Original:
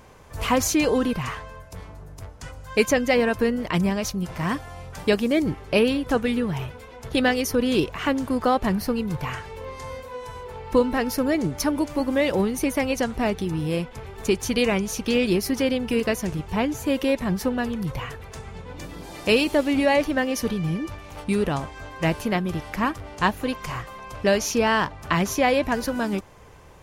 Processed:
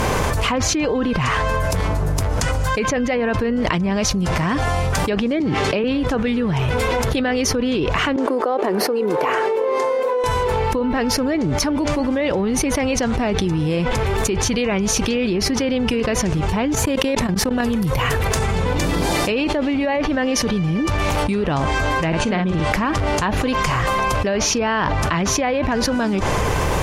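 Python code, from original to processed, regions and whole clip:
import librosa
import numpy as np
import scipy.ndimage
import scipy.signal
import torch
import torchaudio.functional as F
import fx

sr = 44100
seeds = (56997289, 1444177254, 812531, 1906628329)

y = fx.chain(x, sr, fx.highpass(hz=110.0, slope=12),
    fx.high_shelf(hz=9900.0, db=-11.0),
    fx.band_squash(depth_pct=70), at=(5.4, 5.84))
y = fx.chain(y, sr, fx.ladder_highpass(hz=330.0, resonance_pct=45),
    fx.high_shelf(hz=2200.0, db=-11.5), at=(8.16, 10.24))
y = fx.chain(y, sr, fx.high_shelf(hz=10000.0, db=6.0),
    fx.level_steps(step_db=23), at=(16.75, 18.76))
y = fx.chain(y, sr, fx.brickwall_lowpass(high_hz=9700.0),
    fx.peak_eq(hz=5200.0, db=-5.5, octaves=0.25),
    fx.doubler(ms=49.0, db=-6), at=(22.08, 22.71))
y = fx.env_lowpass_down(y, sr, base_hz=2700.0, full_db=-15.5)
y = fx.env_flatten(y, sr, amount_pct=100)
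y = y * 10.0 ** (-5.0 / 20.0)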